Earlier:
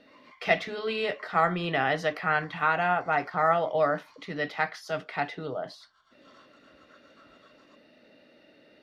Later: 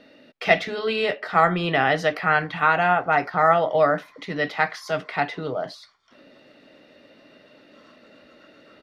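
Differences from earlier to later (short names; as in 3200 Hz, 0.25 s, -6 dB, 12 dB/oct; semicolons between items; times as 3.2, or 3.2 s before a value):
speech +6.0 dB; background: entry +1.50 s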